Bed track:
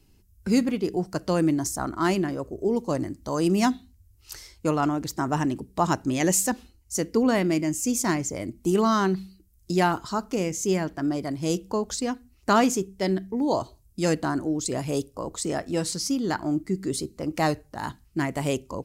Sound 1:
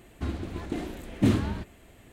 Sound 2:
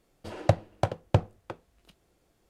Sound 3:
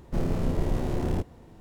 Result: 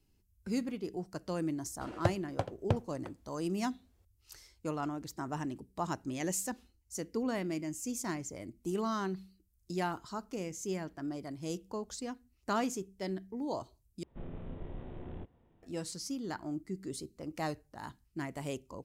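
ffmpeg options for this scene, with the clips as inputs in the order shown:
-filter_complex "[0:a]volume=-12.5dB[a];[3:a]aresample=8000,aresample=44100[b];[a]asplit=2[c][d];[c]atrim=end=14.034[e];[b]atrim=end=1.6,asetpts=PTS-STARTPTS,volume=-17dB[f];[d]atrim=start=15.626[g];[2:a]atrim=end=2.49,asetpts=PTS-STARTPTS,volume=-8dB,afade=t=in:d=0.004:c=hsin,afade=t=out:st=2.486:d=0.004:c=hsin,adelay=1560[h];[e][f]acrossfade=d=0.004:c1=hsin:c2=hsin[i];[i][g]acrossfade=d=0.004:c1=hsin:c2=hsin[j];[j][h]amix=inputs=2:normalize=0"

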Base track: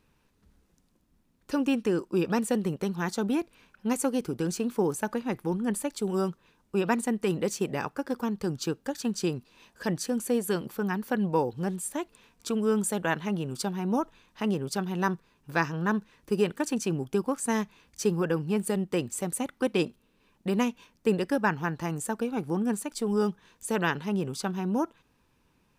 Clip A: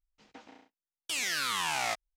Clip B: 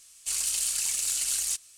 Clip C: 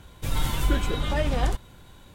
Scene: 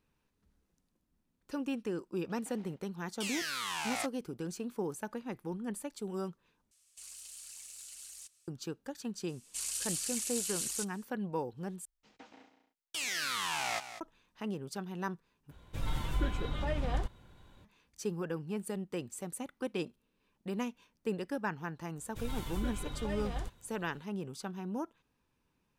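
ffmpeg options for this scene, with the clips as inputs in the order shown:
-filter_complex "[1:a]asplit=2[a][b];[2:a]asplit=2[c][d];[3:a]asplit=2[e][f];[0:a]volume=-10dB[g];[c]alimiter=level_in=0.5dB:limit=-24dB:level=0:latency=1:release=37,volume=-0.5dB[h];[d]aresample=32000,aresample=44100[i];[b]aecho=1:1:197:0.251[j];[e]aemphasis=mode=reproduction:type=cd[k];[g]asplit=4[l][m][n][o];[l]atrim=end=6.714[p];[h]atrim=end=1.77,asetpts=PTS-STARTPTS,volume=-16dB[q];[m]atrim=start=8.476:end=11.854[r];[j]atrim=end=2.16,asetpts=PTS-STARTPTS,volume=-3.5dB[s];[n]atrim=start=14.006:end=15.514[t];[k]atrim=end=2.14,asetpts=PTS-STARTPTS,volume=-9dB[u];[o]atrim=start=17.646[v];[a]atrim=end=2.16,asetpts=PTS-STARTPTS,volume=-5.5dB,afade=t=in:d=0.004:c=hsin,afade=t=out:st=2.156:d=0.004:c=hsin,adelay=2110[w];[i]atrim=end=1.77,asetpts=PTS-STARTPTS,volume=-8.5dB,afade=t=in:d=0.004:c=hsin,afade=t=out:st=1.766:d=0.004:c=hsin,adelay=9280[x];[f]atrim=end=2.14,asetpts=PTS-STARTPTS,volume=-14dB,afade=t=in:d=0.1,afade=t=out:st=2.04:d=0.1,adelay=21930[y];[p][q]acrossfade=d=0.004:c1=hsin:c2=hsin[z];[z][r]acrossfade=d=0.004:c1=hsin:c2=hsin[aa];[aa][s]acrossfade=d=0.004:c1=hsin:c2=hsin[ab];[ab][t]acrossfade=d=0.004:c1=hsin:c2=hsin[ac];[ac][u]acrossfade=d=0.004:c1=hsin:c2=hsin[ad];[ad][v]acrossfade=d=0.004:c1=hsin:c2=hsin[ae];[ae][w][x][y]amix=inputs=4:normalize=0"

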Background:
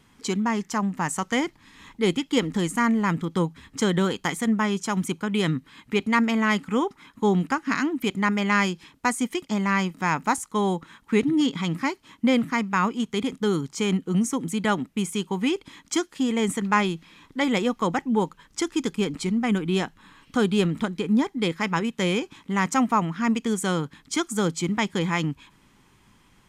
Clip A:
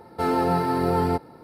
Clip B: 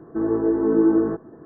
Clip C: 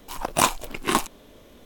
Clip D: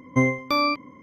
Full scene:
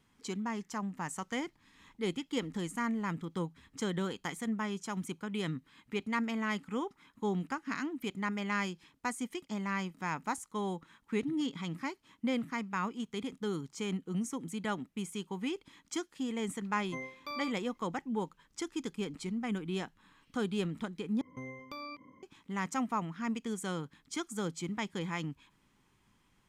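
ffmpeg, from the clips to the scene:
-filter_complex "[4:a]asplit=2[a][b];[0:a]volume=-12dB[c];[a]highpass=f=500:p=1[d];[b]acompressor=threshold=-31dB:ratio=3:attack=2.5:release=162:knee=1:detection=peak[e];[c]asplit=2[f][g];[f]atrim=end=21.214[h];[e]atrim=end=1.02,asetpts=PTS-STARTPTS,volume=-12dB[i];[g]atrim=start=22.226[j];[d]atrim=end=1.02,asetpts=PTS-STARTPTS,volume=-17.5dB,afade=t=in:d=0.004:c=hsin,afade=t=out:st=1.016:d=0.004:c=hsin,adelay=16760[k];[h][i]acrossfade=d=0.004:c1=hsin:c2=hsin[l];[l][j]acrossfade=d=0.004:c1=hsin:c2=hsin[m];[m][k]amix=inputs=2:normalize=0"

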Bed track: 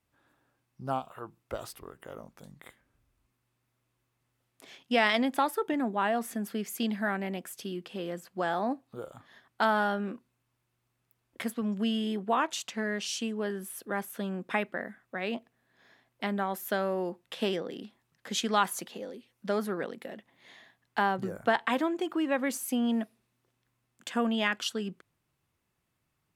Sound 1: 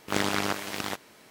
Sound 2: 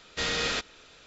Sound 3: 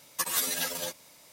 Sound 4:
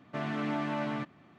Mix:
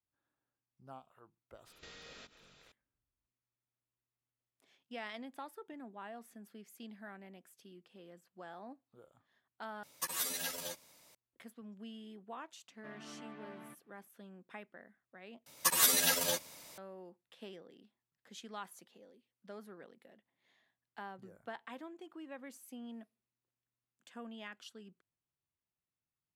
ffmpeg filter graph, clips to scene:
-filter_complex "[3:a]asplit=2[a][b];[0:a]volume=-19.5dB[c];[2:a]acompressor=threshold=-41dB:ratio=6:attack=3.2:release=140:knee=1:detection=peak[d];[4:a]highpass=180,lowpass=4.5k[e];[b]dynaudnorm=f=110:g=3:m=5dB[f];[c]asplit=3[g][h][i];[g]atrim=end=9.834[j];[a]atrim=end=1.32,asetpts=PTS-STARTPTS,volume=-8dB[k];[h]atrim=start=11.146:end=15.464[l];[f]atrim=end=1.32,asetpts=PTS-STARTPTS,volume=-3.5dB[m];[i]atrim=start=16.776[n];[d]atrim=end=1.06,asetpts=PTS-STARTPTS,volume=-10.5dB,afade=t=in:d=0.004:c=hsin,afade=t=out:st=1.056:d=0.004:c=hsin,adelay=1660[o];[e]atrim=end=1.38,asetpts=PTS-STARTPTS,volume=-17.5dB,afade=t=in:d=0.004:c=hsin,afade=t=out:st=1.376:d=0.004:c=hsin,adelay=12700[p];[j][k]acrossfade=d=0.004:c1=hsin:c2=hsin[q];[q][l]acrossfade=d=0.004:c1=hsin:c2=hsin[r];[r][m]acrossfade=d=0.004:c1=hsin:c2=hsin[s];[s][n]acrossfade=d=0.004:c1=hsin:c2=hsin[t];[t][o][p]amix=inputs=3:normalize=0"

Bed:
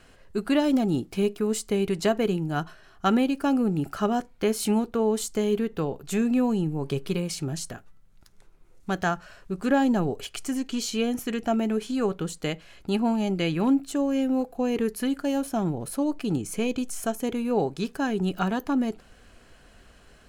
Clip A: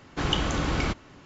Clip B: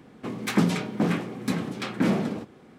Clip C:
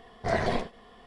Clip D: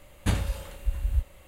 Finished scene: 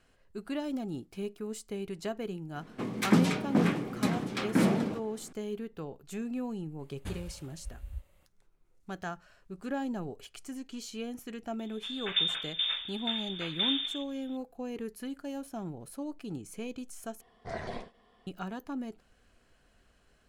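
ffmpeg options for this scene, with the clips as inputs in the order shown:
-filter_complex "[2:a]asplit=2[a][b];[0:a]volume=-12.5dB[c];[b]lowpass=f=3.2k:t=q:w=0.5098,lowpass=f=3.2k:t=q:w=0.6013,lowpass=f=3.2k:t=q:w=0.9,lowpass=f=3.2k:t=q:w=2.563,afreqshift=-3800[d];[c]asplit=2[e][f];[e]atrim=end=17.214[g];[3:a]atrim=end=1.06,asetpts=PTS-STARTPTS,volume=-11.5dB[h];[f]atrim=start=18.266[i];[a]atrim=end=2.78,asetpts=PTS-STARTPTS,volume=-2dB,afade=t=in:d=0.004:c=hsin,afade=t=out:st=2.776:d=0.004:c=hsin,adelay=2550[j];[4:a]atrim=end=1.47,asetpts=PTS-STARTPTS,volume=-15dB,afade=t=in:d=0.004:c=hsin,afade=t=out:st=1.466:d=0.004:c=hsin,adelay=6790[k];[d]atrim=end=2.78,asetpts=PTS-STARTPTS,volume=-7.5dB,afade=t=in:d=0.004:c=hsin,afade=t=out:st=2.776:d=0.004:c=hsin,adelay=11590[l];[g][h]acrossfade=d=0.004:c1=hsin:c2=hsin[m];[m][i]acrossfade=d=0.004:c1=hsin:c2=hsin[n];[n][j][k][l]amix=inputs=4:normalize=0"

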